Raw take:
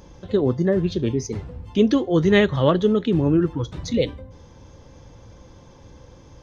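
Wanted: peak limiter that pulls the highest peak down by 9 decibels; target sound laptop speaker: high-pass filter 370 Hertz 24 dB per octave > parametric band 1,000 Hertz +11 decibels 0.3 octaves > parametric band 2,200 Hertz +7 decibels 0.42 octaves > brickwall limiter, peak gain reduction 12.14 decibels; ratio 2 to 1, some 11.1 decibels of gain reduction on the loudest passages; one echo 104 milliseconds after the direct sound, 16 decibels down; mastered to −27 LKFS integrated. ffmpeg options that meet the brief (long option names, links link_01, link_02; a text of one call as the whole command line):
ffmpeg -i in.wav -af "acompressor=threshold=-33dB:ratio=2,alimiter=level_in=1dB:limit=-24dB:level=0:latency=1,volume=-1dB,highpass=frequency=370:width=0.5412,highpass=frequency=370:width=1.3066,equalizer=frequency=1000:width_type=o:width=0.3:gain=11,equalizer=frequency=2200:width_type=o:width=0.42:gain=7,aecho=1:1:104:0.158,volume=17.5dB,alimiter=limit=-17dB:level=0:latency=1" out.wav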